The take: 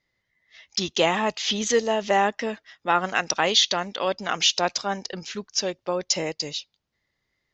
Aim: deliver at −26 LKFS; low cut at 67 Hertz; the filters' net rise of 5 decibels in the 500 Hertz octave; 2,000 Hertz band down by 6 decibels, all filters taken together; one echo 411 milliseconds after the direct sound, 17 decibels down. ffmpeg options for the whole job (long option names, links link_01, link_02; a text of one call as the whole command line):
ffmpeg -i in.wav -af "highpass=67,equalizer=frequency=500:width_type=o:gain=6.5,equalizer=frequency=2000:width_type=o:gain=-8.5,aecho=1:1:411:0.141,volume=-3dB" out.wav